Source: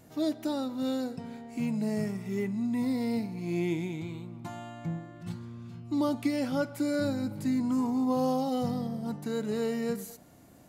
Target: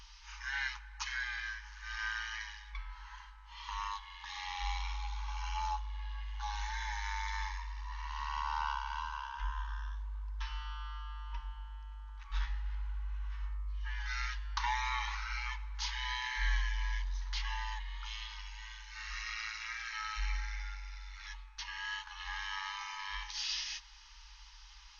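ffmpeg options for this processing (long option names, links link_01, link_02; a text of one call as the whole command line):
ffmpeg -i in.wav -af "afftfilt=real='re*(1-between(b*sr/4096,120,1900))':imag='im*(1-between(b*sr/4096,120,1900))':win_size=4096:overlap=0.75,asetrate=18846,aresample=44100,volume=8dB" out.wav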